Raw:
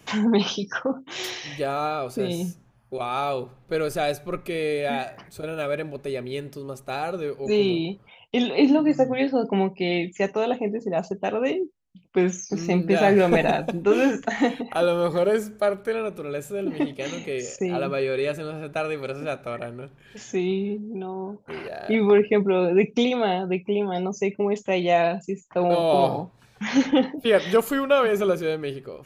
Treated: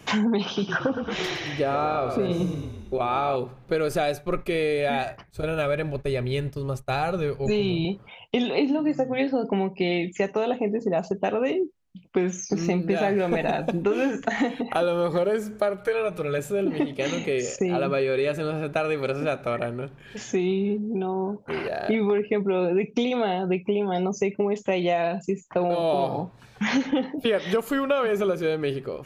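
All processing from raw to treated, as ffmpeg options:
ffmpeg -i in.wav -filter_complex "[0:a]asettb=1/sr,asplit=3[link_01][link_02][link_03];[link_01]atrim=end=0.454[link_04];[link_02]atrim=start=0.45:end=3.36,asetpts=PTS-STARTPTS,afade=type=in:duration=0.004:curve=qsin,afade=type=out:start_time=2.906:duration=0.004:curve=qsin,lowpass=frequency=2700:poles=1,asplit=8[link_05][link_06][link_07][link_08][link_09][link_10][link_11][link_12];[link_06]adelay=111,afreqshift=-31,volume=-9.5dB[link_13];[link_07]adelay=222,afreqshift=-62,volume=-13.9dB[link_14];[link_08]adelay=333,afreqshift=-93,volume=-18.4dB[link_15];[link_09]adelay=444,afreqshift=-124,volume=-22.8dB[link_16];[link_10]adelay=555,afreqshift=-155,volume=-27.2dB[link_17];[link_11]adelay=666,afreqshift=-186,volume=-31.7dB[link_18];[link_12]adelay=777,afreqshift=-217,volume=-36.1dB[link_19];[link_05][link_13][link_14][link_15][link_16][link_17][link_18][link_19]amix=inputs=8:normalize=0,atrim=end_sample=128331[link_20];[link_03]atrim=start=3.356[link_21];[link_04][link_20]acrossfade=duration=0.004:curve1=hsin:curve2=qsin[link_22];[link_22][link_21]acrossfade=duration=0.004:curve1=qsin:curve2=hsin,asettb=1/sr,asplit=3[link_23][link_24][link_25];[link_23]atrim=end=4.024[link_26];[link_24]atrim=start=4.02:end=7.85,asetpts=PTS-STARTPTS,afade=type=in:duration=0.004:curve=qsin,afade=type=out:start_time=3.826:duration=0.004:curve=qsin,agate=range=-33dB:threshold=-39dB:ratio=3:release=100:detection=peak,asubboost=boost=9.5:cutoff=100[link_27];[link_25]atrim=start=7.846[link_28];[link_26][link_27]acrossfade=duration=0.004:curve1=hsin:curve2=qsin[link_29];[link_29][link_28]acrossfade=duration=0.004:curve1=qsin:curve2=hsin,asettb=1/sr,asplit=3[link_30][link_31][link_32];[link_30]atrim=end=15.774[link_33];[link_31]atrim=start=15.77:end=16.39,asetpts=PTS-STARTPTS,afade=type=in:duration=0.004:curve=qsin,afade=type=out:start_time=0.616:duration=0.004:curve=qsin,equalizer=frequency=270:width_type=o:width=0.93:gain=-9,aecho=1:1:6.4:0.66,atrim=end_sample=27342[link_34];[link_32]atrim=start=16.386[link_35];[link_33][link_34]acrossfade=duration=0.004:curve1=hsin:curve2=qsin[link_36];[link_36][link_35]acrossfade=duration=0.004:curve1=qsin:curve2=hsin,highshelf=frequency=6100:gain=-5.5,acompressor=threshold=-26dB:ratio=6,volume=5.5dB" out.wav

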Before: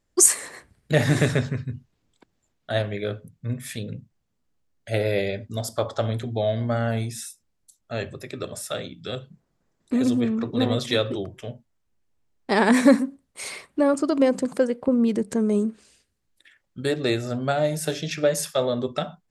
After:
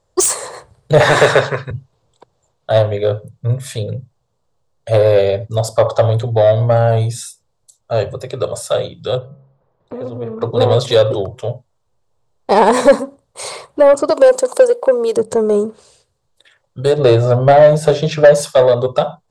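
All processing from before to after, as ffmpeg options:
ffmpeg -i in.wav -filter_complex "[0:a]asettb=1/sr,asplit=3[link_01][link_02][link_03];[link_01]atrim=end=1.004[link_04];[link_02]atrim=start=1:end=1.71,asetpts=PTS-STARTPTS,afade=type=in:duration=0.004:curve=qsin,afade=type=out:start_time=0.706:duration=0.004:curve=qsin,highpass=230,equalizer=frequency=1700:width_type=o:width=2.4:gain=14.5[link_05];[link_03]atrim=start=1.706[link_06];[link_04][link_05]acrossfade=duration=0.004:curve1=hsin:curve2=qsin[link_07];[link_07][link_06]acrossfade=duration=0.004:curve1=qsin:curve2=hsin,asettb=1/sr,asplit=3[link_08][link_09][link_10];[link_08]atrim=end=9.174[link_11];[link_09]atrim=start=9.17:end=10.42,asetpts=PTS-STARTPTS,afade=type=in:duration=0.004:curve=qsin,afade=type=out:start_time=1.246:duration=0.004:curve=qsin,lowpass=2200,bandreject=frequency=67.52:width_type=h:width=4,bandreject=frequency=135.04:width_type=h:width=4,bandreject=frequency=202.56:width_type=h:width=4,bandreject=frequency=270.08:width_type=h:width=4,bandreject=frequency=337.6:width_type=h:width=4,bandreject=frequency=405.12:width_type=h:width=4,bandreject=frequency=472.64:width_type=h:width=4,bandreject=frequency=540.16:width_type=h:width=4,bandreject=frequency=607.68:width_type=h:width=4,bandreject=frequency=675.2:width_type=h:width=4,bandreject=frequency=742.72:width_type=h:width=4,bandreject=frequency=810.24:width_type=h:width=4,bandreject=frequency=877.76:width_type=h:width=4,bandreject=frequency=945.28:width_type=h:width=4,bandreject=frequency=1012.8:width_type=h:width=4,bandreject=frequency=1080.32:width_type=h:width=4,bandreject=frequency=1147.84:width_type=h:width=4,bandreject=frequency=1215.36:width_type=h:width=4,bandreject=frequency=1282.88:width_type=h:width=4,acompressor=threshold=-29dB:ratio=5:attack=3.2:release=140:knee=1:detection=peak[link_12];[link_10]atrim=start=10.416[link_13];[link_11][link_12]acrossfade=duration=0.004:curve1=hsin:curve2=qsin[link_14];[link_14][link_13]acrossfade=duration=0.004:curve1=qsin:curve2=hsin,asettb=1/sr,asplit=3[link_15][link_16][link_17];[link_15]atrim=end=14.104[link_18];[link_16]atrim=start=14.1:end=15.17,asetpts=PTS-STARTPTS,afade=type=in:duration=0.004:curve=qsin,afade=type=out:start_time=1.066:duration=0.004:curve=qsin,highpass=frequency=300:width=0.5412,highpass=frequency=300:width=1.3066,aemphasis=mode=production:type=50fm[link_19];[link_17]atrim=start=15.166[link_20];[link_18][link_19]acrossfade=duration=0.004:curve1=hsin:curve2=qsin[link_21];[link_21][link_20]acrossfade=duration=0.004:curve1=qsin:curve2=hsin,asettb=1/sr,asplit=3[link_22][link_23][link_24];[link_22]atrim=end=16.984[link_25];[link_23]atrim=start=16.98:end=18.41,asetpts=PTS-STARTPTS,afade=type=in:duration=0.004:curve=qsin,afade=type=out:start_time=1.426:duration=0.004:curve=qsin,lowpass=frequency=2400:poles=1,acontrast=26[link_26];[link_24]atrim=start=18.406[link_27];[link_25][link_26]acrossfade=duration=0.004:curve1=hsin:curve2=qsin[link_28];[link_28][link_27]acrossfade=duration=0.004:curve1=qsin:curve2=hsin,equalizer=frequency=125:width_type=o:width=1:gain=10,equalizer=frequency=250:width_type=o:width=1:gain=-12,equalizer=frequency=500:width_type=o:width=1:gain=12,equalizer=frequency=1000:width_type=o:width=1:gain=10,equalizer=frequency=2000:width_type=o:width=1:gain=-6,equalizer=frequency=4000:width_type=o:width=1:gain=8,equalizer=frequency=8000:width_type=o:width=1:gain=10,acontrast=62,highshelf=frequency=3100:gain=-9.5,volume=-1dB" out.wav

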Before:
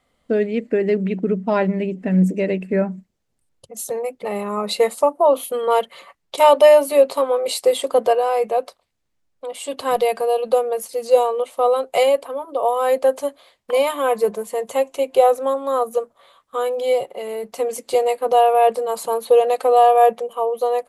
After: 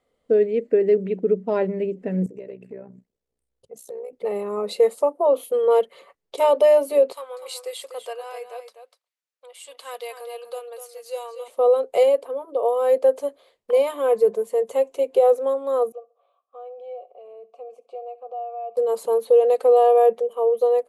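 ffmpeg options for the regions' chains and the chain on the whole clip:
ffmpeg -i in.wav -filter_complex "[0:a]asettb=1/sr,asplit=3[link_01][link_02][link_03];[link_01]atrim=end=2.264[link_04];[link_02]atrim=start=2.26:end=4.13,asetpts=PTS-STARTPTS,afade=type=in:duration=0.004:curve=qsin,afade=type=out:start_time=1.866:duration=0.004:curve=qsin,tremolo=f=62:d=0.75,acompressor=threshold=-32dB:ratio=6:attack=3.2:release=140:knee=1:detection=peak[link_05];[link_03]atrim=start=4.126[link_06];[link_04][link_05]acrossfade=duration=0.004:curve1=hsin:curve2=qsin[link_07];[link_07][link_06]acrossfade=duration=0.004:curve1=qsin:curve2=hsin,asettb=1/sr,asplit=3[link_08][link_09][link_10];[link_08]atrim=end=7.124[link_11];[link_09]atrim=start=7.12:end=11.48,asetpts=PTS-STARTPTS,afade=type=in:duration=0.004:curve=qsin,afade=type=out:start_time=4.356:duration=0.004:curve=qsin,highpass=1400,aecho=1:1:247:0.335,atrim=end_sample=192276[link_12];[link_10]atrim=start=11.476[link_13];[link_11][link_12]acrossfade=duration=0.004:curve1=hsin:curve2=qsin[link_14];[link_14][link_13]acrossfade=duration=0.004:curve1=qsin:curve2=hsin,asettb=1/sr,asplit=3[link_15][link_16][link_17];[link_15]atrim=end=15.924[link_18];[link_16]atrim=start=15.92:end=18.77,asetpts=PTS-STARTPTS,afade=type=in:duration=0.004:curve=qsin,afade=type=out:start_time=2.846:duration=0.004:curve=qsin,asplit=3[link_19][link_20][link_21];[link_19]bandpass=frequency=730:width_type=q:width=8,volume=0dB[link_22];[link_20]bandpass=frequency=1090:width_type=q:width=8,volume=-6dB[link_23];[link_21]bandpass=frequency=2440:width_type=q:width=8,volume=-9dB[link_24];[link_22][link_23][link_24]amix=inputs=3:normalize=0,acompressor=threshold=-41dB:ratio=1.5:attack=3.2:release=140:knee=1:detection=peak,aecho=1:1:67|134|201:0.1|0.035|0.0123,atrim=end_sample=125685[link_25];[link_17]atrim=start=18.766[link_26];[link_18][link_25]acrossfade=duration=0.004:curve1=hsin:curve2=qsin[link_27];[link_27][link_26]acrossfade=duration=0.004:curve1=qsin:curve2=hsin,equalizer=frequency=450:width=1.9:gain=13,alimiter=level_in=-2dB:limit=-1dB:release=50:level=0:latency=1,volume=-7.5dB" out.wav

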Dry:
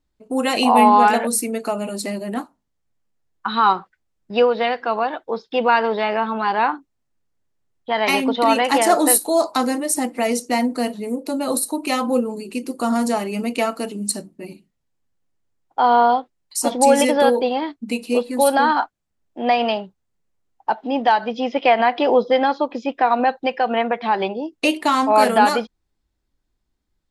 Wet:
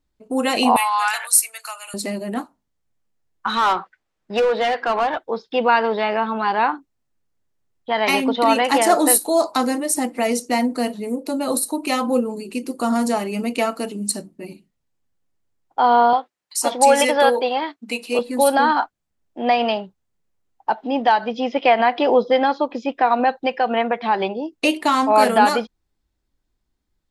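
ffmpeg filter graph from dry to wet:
ffmpeg -i in.wav -filter_complex "[0:a]asettb=1/sr,asplit=3[link_01][link_02][link_03];[link_01]atrim=end=0.764[link_04];[link_02]atrim=start=0.76:end=1.94,asetpts=PTS-STARTPTS,afade=type=in:duration=0.004:curve=qsin,afade=type=out:start_time=1.176:duration=0.004:curve=qsin,highpass=frequency=1100:width=0.5412,highpass=frequency=1100:width=1.3066,highshelf=frequency=5200:gain=9[link_05];[link_03]atrim=start=1.936[link_06];[link_04][link_05]acrossfade=duration=0.004:curve1=hsin:curve2=qsin[link_07];[link_07][link_06]acrossfade=duration=0.004:curve1=qsin:curve2=hsin,asettb=1/sr,asplit=3[link_08][link_09][link_10];[link_08]atrim=end=3.474[link_11];[link_09]atrim=start=3.47:end=5.19,asetpts=PTS-STARTPTS,afade=type=in:duration=0.004:curve=qsin,afade=type=out:start_time=1.716:duration=0.004:curve=qsin,asoftclip=type=hard:threshold=-13.5dB,asplit=2[link_12][link_13];[link_13]highpass=frequency=720:poles=1,volume=14dB,asoftclip=type=tanh:threshold=-12dB[link_14];[link_12][link_14]amix=inputs=2:normalize=0,lowpass=frequency=2500:poles=1,volume=-6dB[link_15];[link_10]atrim=start=5.186[link_16];[link_11][link_15]acrossfade=duration=0.004:curve1=hsin:curve2=qsin[link_17];[link_17][link_16]acrossfade=duration=0.004:curve1=qsin:curve2=hsin,asettb=1/sr,asplit=3[link_18][link_19][link_20];[link_18]atrim=end=16.134[link_21];[link_19]atrim=start=16.13:end=18.19,asetpts=PTS-STARTPTS,afade=type=in:duration=0.004:curve=qsin,afade=type=out:start_time=2.056:duration=0.004:curve=qsin,highpass=frequency=520:poles=1,equalizer=frequency=1500:width=0.42:gain=4.5[link_22];[link_20]atrim=start=18.186[link_23];[link_21][link_22]acrossfade=duration=0.004:curve1=hsin:curve2=qsin[link_24];[link_24][link_23]acrossfade=duration=0.004:curve1=qsin:curve2=hsin" out.wav

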